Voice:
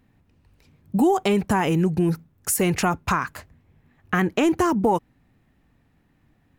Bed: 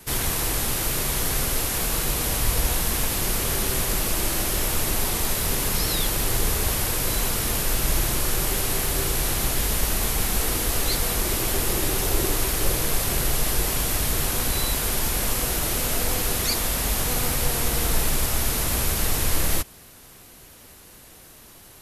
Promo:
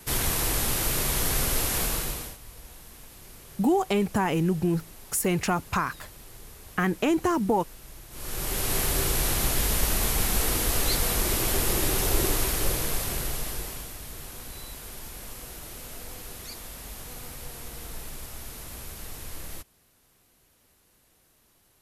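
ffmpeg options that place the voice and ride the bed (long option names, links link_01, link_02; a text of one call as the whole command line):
ffmpeg -i stem1.wav -i stem2.wav -filter_complex "[0:a]adelay=2650,volume=-4dB[link_01];[1:a]volume=20.5dB,afade=type=out:start_time=1.8:duration=0.57:silence=0.0794328,afade=type=in:start_time=8.1:duration=0.68:silence=0.0794328,afade=type=out:start_time=12.25:duration=1.69:silence=0.177828[link_02];[link_01][link_02]amix=inputs=2:normalize=0" out.wav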